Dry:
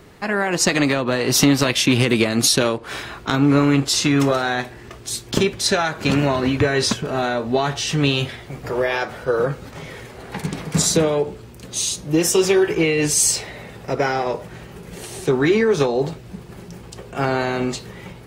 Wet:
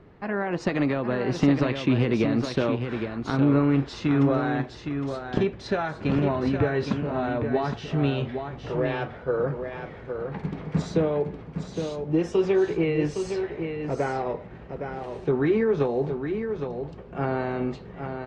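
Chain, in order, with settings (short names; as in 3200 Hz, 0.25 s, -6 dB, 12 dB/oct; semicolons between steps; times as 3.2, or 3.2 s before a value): tape spacing loss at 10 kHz 38 dB; echo 0.813 s -7 dB; gain -4 dB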